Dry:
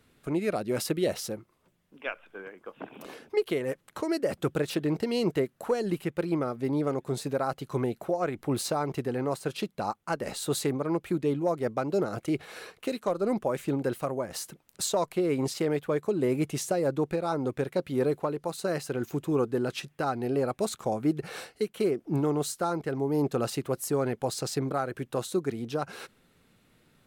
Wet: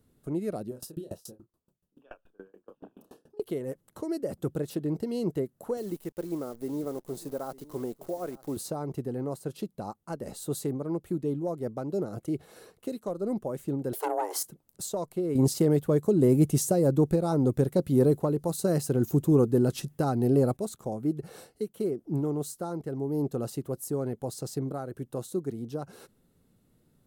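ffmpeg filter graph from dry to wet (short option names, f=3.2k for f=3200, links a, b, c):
-filter_complex "[0:a]asettb=1/sr,asplit=3[a][b][c];[a]atrim=end=0.684[d];[b]atrim=start=0.68:end=3.4,asetpts=PTS-STARTPTS,afade=t=in:d=0.004:c=qsin,afade=t=out:st=2.716:d=0.004:c=qsin,asuperstop=centerf=2100:order=4:qfactor=4,asplit=2[e][f];[f]adelay=31,volume=-2dB[g];[e][g]amix=inputs=2:normalize=0,atrim=end_sample=119952,aeval=exprs='val(0)*pow(10,-28*if(lt(mod(7*n/s,1),2*abs(7)/1000),1-mod(7*n/s,1)/(2*abs(7)/1000),(mod(7*n/s,1)-2*abs(7)/1000)/(1-2*abs(7)/1000))/20)':c=same[h];[c]atrim=start=3.396[i];[d][h]acrossfade=d=0.004:c1=hsin:c2=qsin[j];[j][i]acrossfade=d=0.004:c1=qsin:c2=hsin,asettb=1/sr,asplit=3[k][l][m];[k]atrim=end=5.774[n];[l]atrim=start=5.77:end=8.57,asetpts=PTS-STARTPTS,afade=t=in:d=0.004:c=qsin,afade=t=out:st=2.796:d=0.004:c=qsin,equalizer=f=100:w=0.95:g=-14,acrusher=bits=8:dc=4:mix=0:aa=0.000001,aecho=1:1:903:0.0944,atrim=end_sample=123480[o];[m]atrim=start=8.566[p];[n][o]acrossfade=d=0.004:c1=hsin:c2=qsin[q];[q][p]acrossfade=d=0.004:c1=qsin:c2=hsin,asettb=1/sr,asplit=3[r][s][t];[r]atrim=end=13.934[u];[s]atrim=start=13.93:end=14.43,asetpts=PTS-STARTPTS,afade=t=in:d=0.004:c=qsin,afade=t=out:st=0.496:d=0.004:c=qsin,aeval=exprs='0.158*sin(PI/2*2.24*val(0)/0.158)':c=same,afreqshift=290[v];[t]atrim=start=14.426[w];[u][v]acrossfade=d=0.004:c1=hsin:c2=qsin[x];[x][w]acrossfade=d=0.004:c1=qsin:c2=hsin,asettb=1/sr,asplit=3[y][z][aa];[y]atrim=end=15.354[ab];[z]atrim=start=15.35:end=20.57,asetpts=PTS-STARTPTS,afade=t=in:d=0.004:c=qsin,afade=t=out:st=5.216:d=0.004:c=qsin,bass=f=250:g=4,treble=f=4k:g=4,acontrast=71[ac];[aa]atrim=start=20.566[ad];[ab][ac]acrossfade=d=0.004:c1=hsin:c2=qsin[ae];[ae][ad]acrossfade=d=0.004:c1=qsin:c2=hsin,equalizer=f=2.2k:t=o:w=3:g=-15,bandreject=f=2.4k:w=15"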